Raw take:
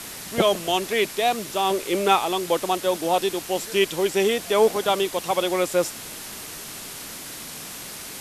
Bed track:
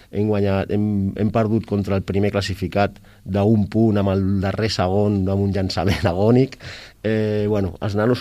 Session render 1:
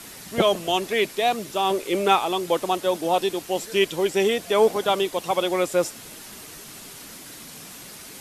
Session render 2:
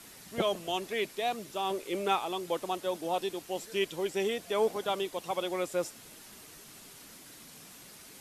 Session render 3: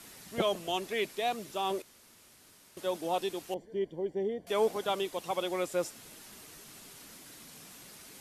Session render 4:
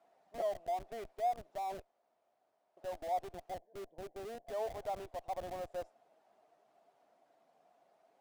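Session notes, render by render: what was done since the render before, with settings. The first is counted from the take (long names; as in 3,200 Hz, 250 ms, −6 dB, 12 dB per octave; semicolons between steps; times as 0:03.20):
broadband denoise 6 dB, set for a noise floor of −37 dBFS
level −10 dB
0:01.82–0:02.77: fill with room tone; 0:03.54–0:04.47: moving average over 34 samples
resonant band-pass 690 Hz, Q 7.6; in parallel at −5 dB: comparator with hysteresis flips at −50.5 dBFS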